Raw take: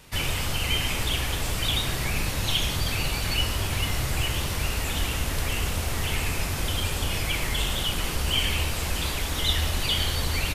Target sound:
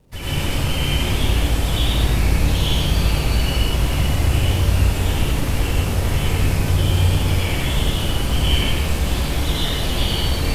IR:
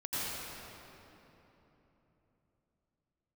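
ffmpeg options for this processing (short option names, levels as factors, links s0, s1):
-filter_complex "[0:a]acrossover=split=680[s0][s1];[s0]acontrast=52[s2];[s1]aeval=exprs='sgn(val(0))*max(abs(val(0))-0.00251,0)':c=same[s3];[s2][s3]amix=inputs=2:normalize=0[s4];[1:a]atrim=start_sample=2205,afade=t=out:st=0.4:d=0.01,atrim=end_sample=18081[s5];[s4][s5]afir=irnorm=-1:irlink=0,volume=0.841"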